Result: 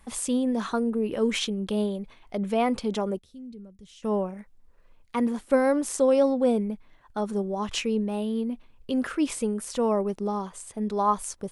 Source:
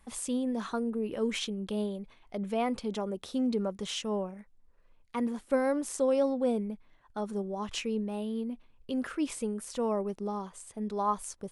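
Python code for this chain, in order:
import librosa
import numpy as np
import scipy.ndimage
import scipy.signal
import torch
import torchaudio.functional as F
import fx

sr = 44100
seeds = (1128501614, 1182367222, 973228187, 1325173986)

y = fx.tone_stack(x, sr, knobs='10-0-1', at=(3.18, 4.02), fade=0.02)
y = y * 10.0 ** (6.0 / 20.0)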